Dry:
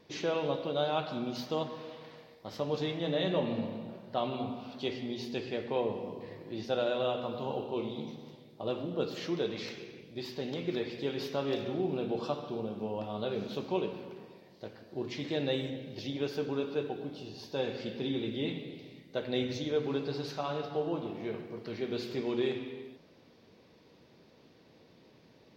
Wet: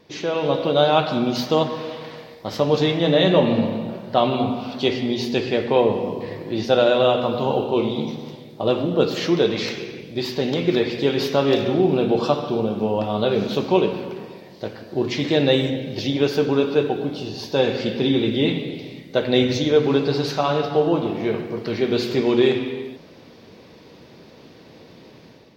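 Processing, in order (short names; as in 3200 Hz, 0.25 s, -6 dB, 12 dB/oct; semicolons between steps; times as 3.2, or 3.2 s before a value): AGC gain up to 8 dB; gain +6.5 dB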